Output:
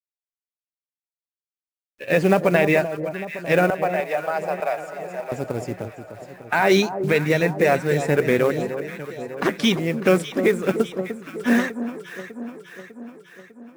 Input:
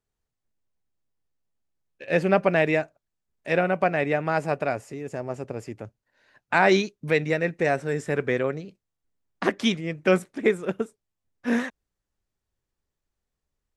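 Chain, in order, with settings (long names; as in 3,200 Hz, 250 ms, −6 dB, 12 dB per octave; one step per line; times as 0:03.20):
spectral magnitudes quantised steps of 15 dB
brickwall limiter −13.5 dBFS, peak gain reduction 7 dB
log-companded quantiser 6 bits
0:03.70–0:05.32: four-pole ladder high-pass 480 Hz, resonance 35%
delay that swaps between a low-pass and a high-pass 300 ms, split 1,100 Hz, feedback 75%, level −9.5 dB
level +6.5 dB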